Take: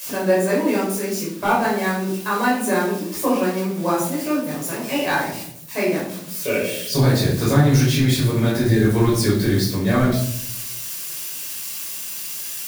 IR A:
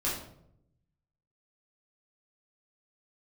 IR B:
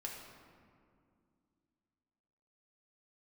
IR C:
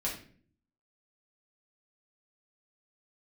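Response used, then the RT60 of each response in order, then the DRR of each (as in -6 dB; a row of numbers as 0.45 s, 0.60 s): A; 0.70 s, 2.3 s, 0.50 s; -7.0 dB, -2.0 dB, -5.0 dB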